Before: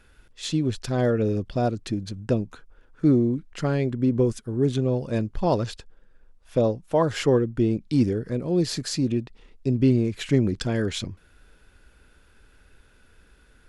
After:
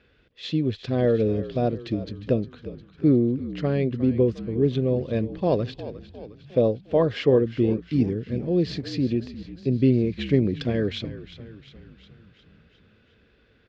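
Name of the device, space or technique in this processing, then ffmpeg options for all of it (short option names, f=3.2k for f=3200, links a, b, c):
frequency-shifting delay pedal into a guitar cabinet: -filter_complex "[0:a]asettb=1/sr,asplit=3[a][b][c];[a]atrim=end=7.824[d];[b]atrim=start=7.82:end=8.48,asetpts=PTS-STARTPTS,afade=t=in:d=0.004:c=qsin,afade=t=out:st=0.656:d=0.004:c=qsin,equalizer=f=500:t=o:w=1:g=-6,equalizer=f=1k:t=o:w=1:g=-6,equalizer=f=4k:t=o:w=1:g=-5,equalizer=f=8k:t=o:w=1:g=5[e];[c]atrim=start=8.476[f];[d][e]acrossfade=d=0.004:c1=hsin:c2=qsin[g];[g][f]acrossfade=d=0.004:c1=qsin:c2=hsin,asplit=7[h][i][j][k][l][m][n];[i]adelay=356,afreqshift=-54,volume=-14dB[o];[j]adelay=712,afreqshift=-108,volume=-18.4dB[p];[k]adelay=1068,afreqshift=-162,volume=-22.9dB[q];[l]adelay=1424,afreqshift=-216,volume=-27.3dB[r];[m]adelay=1780,afreqshift=-270,volume=-31.7dB[s];[n]adelay=2136,afreqshift=-324,volume=-36.2dB[t];[h][o][p][q][r][s][t]amix=inputs=7:normalize=0,highpass=83,equalizer=f=470:t=q:w=4:g=4,equalizer=f=900:t=q:w=4:g=-9,equalizer=f=1.4k:t=q:w=4:g=-7,lowpass=f=4.1k:w=0.5412,lowpass=f=4.1k:w=1.3066"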